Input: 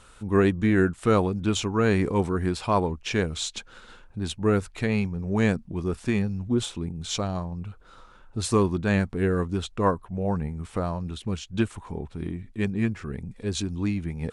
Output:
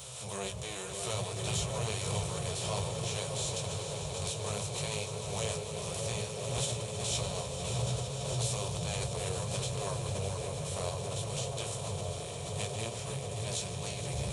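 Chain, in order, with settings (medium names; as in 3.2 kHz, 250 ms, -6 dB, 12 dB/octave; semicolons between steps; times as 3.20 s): spectral levelling over time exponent 0.4; wind noise 140 Hz -19 dBFS; high-pass 77 Hz 12 dB/octave; in parallel at -3 dB: level held to a coarse grid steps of 20 dB; on the sum: FFT filter 140 Hz 0 dB, 270 Hz -28 dB, 570 Hz -5 dB, 1.6 kHz -21 dB, 2.6 kHz -8 dB; chorus 0.14 Hz, delay 15.5 ms, depth 5.5 ms; RIAA curve recording; on a send: feedback echo behind a low-pass 611 ms, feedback 81%, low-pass 630 Hz, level -3 dB; on the sum: flange 0.61 Hz, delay 7 ms, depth 6 ms, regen +49%; echo with a slow build-up 151 ms, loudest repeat 5, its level -13 dB; swell ahead of each attack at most 31 dB/s; trim -4.5 dB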